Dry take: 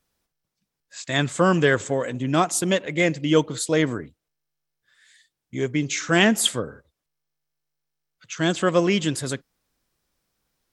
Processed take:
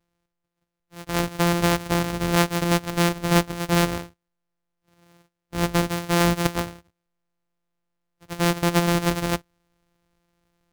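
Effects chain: sample sorter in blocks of 256 samples; vocal rider 0.5 s

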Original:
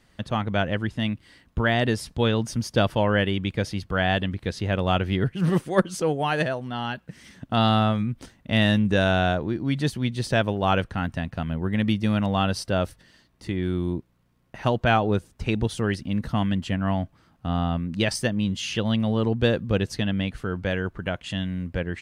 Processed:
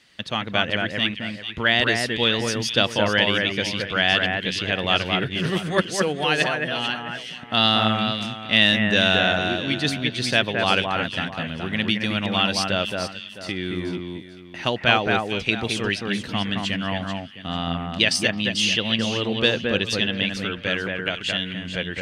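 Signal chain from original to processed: weighting filter D; echo with dull and thin repeats by turns 0.22 s, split 2300 Hz, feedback 53%, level -3 dB; gain -1 dB

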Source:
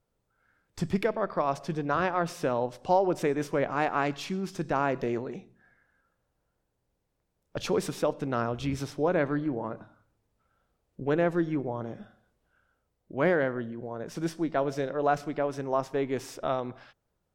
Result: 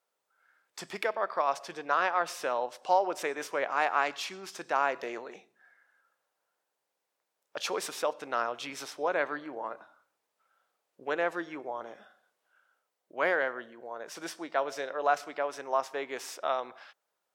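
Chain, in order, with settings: HPF 720 Hz 12 dB/oct; gain +2.5 dB

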